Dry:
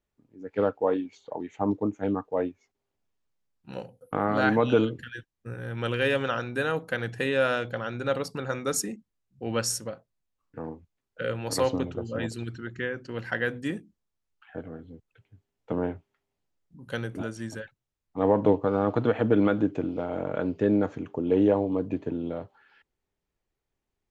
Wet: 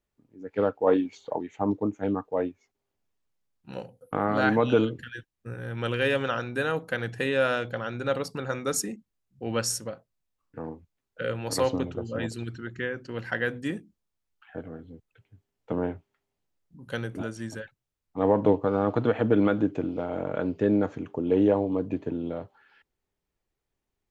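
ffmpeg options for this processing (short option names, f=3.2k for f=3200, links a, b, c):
-filter_complex "[0:a]asplit=3[a][b][c];[a]afade=t=out:st=0.86:d=0.02[d];[b]acontrast=26,afade=t=in:st=0.86:d=0.02,afade=t=out:st=1.38:d=0.02[e];[c]afade=t=in:st=1.38:d=0.02[f];[d][e][f]amix=inputs=3:normalize=0"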